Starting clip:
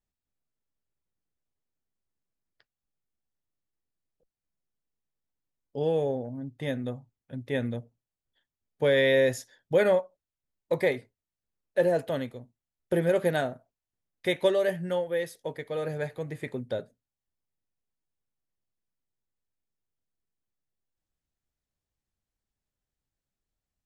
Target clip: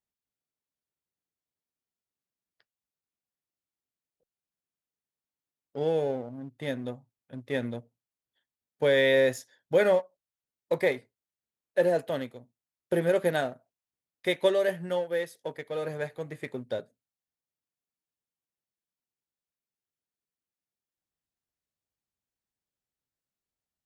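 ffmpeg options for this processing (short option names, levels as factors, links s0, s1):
-filter_complex "[0:a]asplit=2[s0][s1];[s1]aeval=exprs='sgn(val(0))*max(abs(val(0))-0.0126,0)':c=same,volume=0.631[s2];[s0][s2]amix=inputs=2:normalize=0,highpass=f=160:p=1,volume=0.668"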